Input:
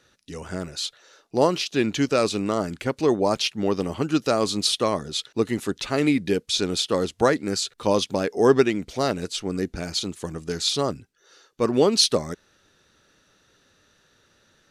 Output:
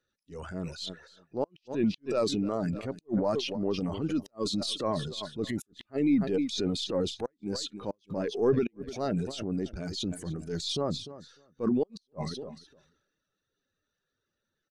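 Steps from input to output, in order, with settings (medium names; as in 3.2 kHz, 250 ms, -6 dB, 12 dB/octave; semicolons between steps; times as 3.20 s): partial rectifier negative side -3 dB; reverb removal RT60 0.62 s; feedback delay 299 ms, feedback 26%, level -18.5 dB; transient shaper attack +2 dB, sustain +8 dB; compression 2:1, threshold -30 dBFS, peak gain reduction 10.5 dB; transient shaper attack -9 dB, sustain +7 dB; inverted gate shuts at -17 dBFS, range -34 dB; spectral contrast expander 1.5:1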